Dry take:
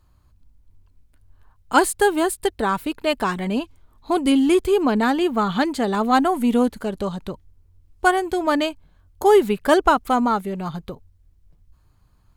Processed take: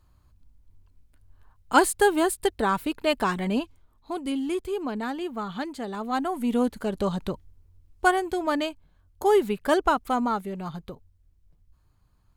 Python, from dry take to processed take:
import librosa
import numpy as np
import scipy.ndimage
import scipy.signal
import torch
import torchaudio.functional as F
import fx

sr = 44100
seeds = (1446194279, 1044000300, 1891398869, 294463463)

y = fx.gain(x, sr, db=fx.line((3.58, -2.5), (4.14, -11.5), (6.03, -11.5), (7.19, 1.0), (8.55, -6.0)))